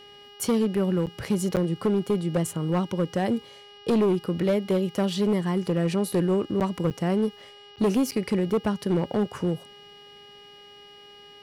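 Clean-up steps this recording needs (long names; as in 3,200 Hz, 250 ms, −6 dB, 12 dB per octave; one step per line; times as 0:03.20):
clipped peaks rebuilt −17.5 dBFS
hum removal 408.6 Hz, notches 14
notch filter 2,900 Hz, Q 30
repair the gap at 0:01.06/0:01.56/0:06.60/0:06.90/0:07.76/0:08.11, 8.2 ms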